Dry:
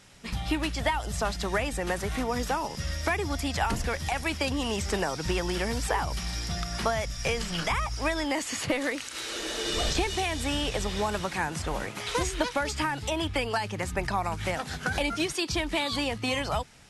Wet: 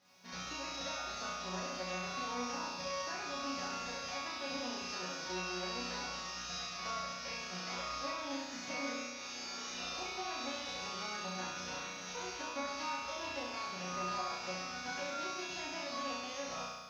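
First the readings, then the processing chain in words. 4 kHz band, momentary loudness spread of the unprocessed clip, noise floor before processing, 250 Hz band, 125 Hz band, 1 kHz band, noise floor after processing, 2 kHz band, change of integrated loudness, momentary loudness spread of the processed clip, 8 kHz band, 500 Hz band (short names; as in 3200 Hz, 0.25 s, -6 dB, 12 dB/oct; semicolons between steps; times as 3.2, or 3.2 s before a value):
-8.5 dB, 4 LU, -40 dBFS, -13.5 dB, -20.0 dB, -9.0 dB, -45 dBFS, -10.5 dB, -10.0 dB, 3 LU, -8.0 dB, -12.5 dB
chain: spectral whitening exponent 0.3; compressor, threshold -28 dBFS, peak gain reduction 7.5 dB; Chebyshev low-pass 6200 Hz, order 6; small resonant body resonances 650/2700 Hz, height 8 dB; crackle 370/s -53 dBFS; HPF 67 Hz; bell 2900 Hz -5.5 dB 1.6 oct; resonator bank F#3 sus4, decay 0.51 s; on a send: flutter echo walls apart 5.7 m, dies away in 1.3 s; on the sum: gain +10 dB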